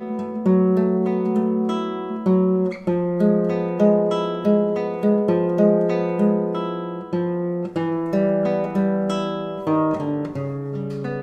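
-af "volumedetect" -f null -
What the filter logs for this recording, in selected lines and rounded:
mean_volume: -20.4 dB
max_volume: -4.8 dB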